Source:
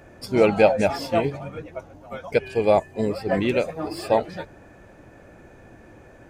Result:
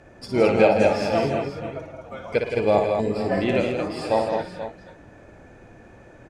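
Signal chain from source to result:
low-pass filter 8,600 Hz 12 dB per octave
multi-tap delay 58/112/168/218/483/519 ms −6/−14/−7.5/−5.5/−12.5/−19 dB
level −2 dB

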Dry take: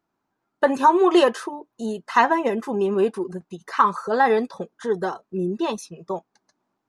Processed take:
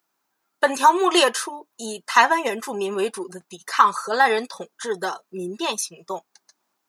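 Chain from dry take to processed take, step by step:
spectral tilt +4 dB per octave
level +1.5 dB

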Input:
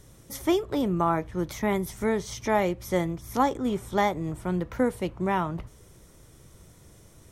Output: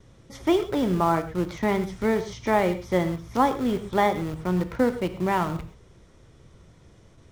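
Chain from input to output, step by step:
low-pass filter 4,400 Hz 12 dB per octave
noise gate with hold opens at −45 dBFS
in parallel at −11 dB: bit reduction 5 bits
on the sum: reverb whose tail is shaped and stops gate 150 ms flat, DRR 10 dB

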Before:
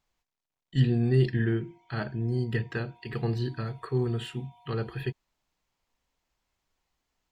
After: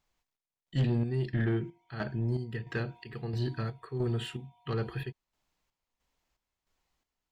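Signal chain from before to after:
square-wave tremolo 1.5 Hz, depth 60%, duty 55%
soft clipping −22 dBFS, distortion −13 dB

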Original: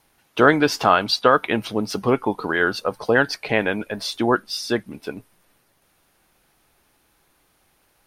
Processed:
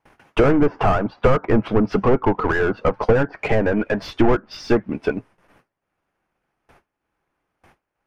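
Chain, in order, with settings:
treble cut that deepens with the level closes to 1,000 Hz, closed at −16 dBFS
noise gate with hold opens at −50 dBFS
mid-hump overdrive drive 29 dB, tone 4,500 Hz, clips at −3 dBFS
parametric band 3,900 Hz −8.5 dB 0.55 octaves
transient designer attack +4 dB, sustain −6 dB
RIAA equalisation playback
level −9.5 dB

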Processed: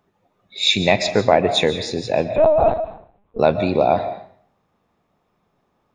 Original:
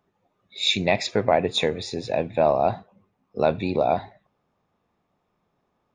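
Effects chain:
on a send at −11 dB: convolution reverb RT60 0.50 s, pre-delay 100 ms
0:02.36–0:03.39: on the sum: linear-prediction vocoder at 8 kHz pitch kept
level +5 dB

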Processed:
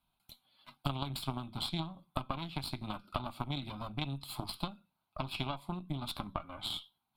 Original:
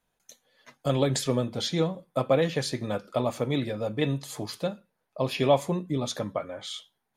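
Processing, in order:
parametric band 4,100 Hz +6.5 dB 0.23 octaves
downward compressor 8 to 1, threshold −34 dBFS, peak gain reduction 18 dB
harmonic generator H 3 −13 dB, 4 −18 dB, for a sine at −21 dBFS
phaser with its sweep stopped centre 1,800 Hz, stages 6
level +9 dB

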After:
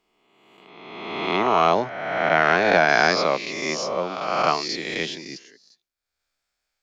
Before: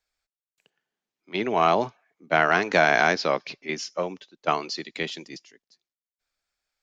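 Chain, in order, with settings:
peak hold with a rise ahead of every peak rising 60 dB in 1.53 s
0:01.80–0:02.89: high-shelf EQ 5,200 Hz −9.5 dB

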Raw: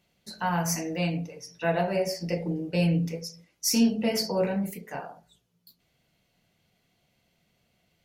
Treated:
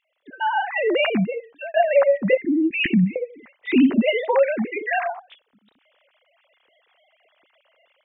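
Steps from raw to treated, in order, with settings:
three sine waves on the formant tracks
0:02.37–0:03.16: Chebyshev band-stop filter 350–1,800 Hz, order 5
0:04.09–0:05.06: spectral tilt +2.5 dB per octave
downward compressor 2 to 1, threshold −37 dBFS, peak gain reduction 11 dB
dynamic equaliser 1,900 Hz, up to +5 dB, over −58 dBFS, Q 2.8
automatic gain control gain up to 12 dB
0:01.26–0:01.74: fade out
level +4 dB

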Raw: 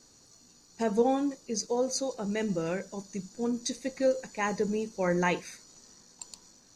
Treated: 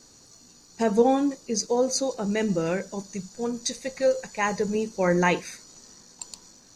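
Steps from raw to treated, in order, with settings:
0:03.14–0:04.75: parametric band 290 Hz −10.5 dB 0.63 octaves
level +5.5 dB

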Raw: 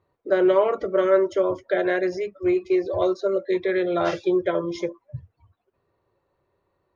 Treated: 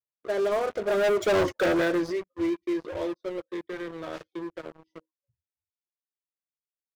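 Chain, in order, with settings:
source passing by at 0:01.44, 25 m/s, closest 2.8 metres
pitch vibrato 0.88 Hz 6.1 cents
leveller curve on the samples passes 5
level −4.5 dB

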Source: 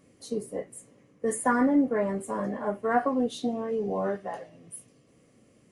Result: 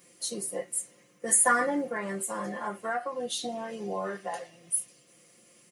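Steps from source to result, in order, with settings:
spectral tilt +3.5 dB per octave
comb filter 5.7 ms, depth 83%
0:01.91–0:04.32: downward compressor 6 to 1, threshold −29 dBFS, peak gain reduction 11.5 dB

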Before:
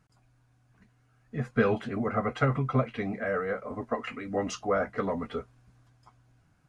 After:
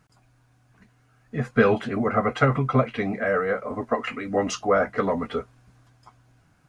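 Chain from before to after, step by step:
low-shelf EQ 170 Hz −4.5 dB
level +7 dB

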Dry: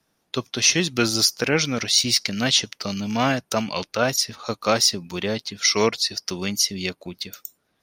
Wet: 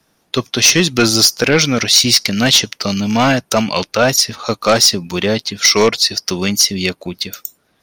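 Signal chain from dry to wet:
sine wavefolder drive 6 dB, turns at −3.5 dBFS

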